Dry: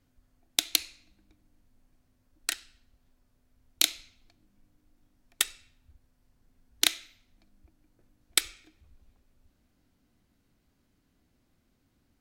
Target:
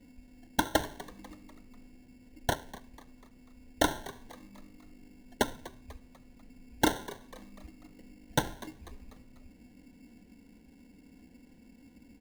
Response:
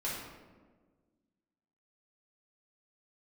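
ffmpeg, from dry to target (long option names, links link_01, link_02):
-filter_complex "[0:a]equalizer=frequency=210:width=0.39:gain=12,aecho=1:1:4:0.94,aresample=11025,volume=18dB,asoftclip=hard,volume=-18dB,aresample=44100,acrusher=samples=18:mix=1:aa=0.000001,asuperstop=centerf=1200:order=20:qfactor=3.8,asplit=2[link_01][link_02];[link_02]asplit=4[link_03][link_04][link_05][link_06];[link_03]adelay=246,afreqshift=100,volume=-18dB[link_07];[link_04]adelay=492,afreqshift=200,volume=-25.3dB[link_08];[link_05]adelay=738,afreqshift=300,volume=-32.7dB[link_09];[link_06]adelay=984,afreqshift=400,volume=-40dB[link_10];[link_07][link_08][link_09][link_10]amix=inputs=4:normalize=0[link_11];[link_01][link_11]amix=inputs=2:normalize=0,volume=2.5dB"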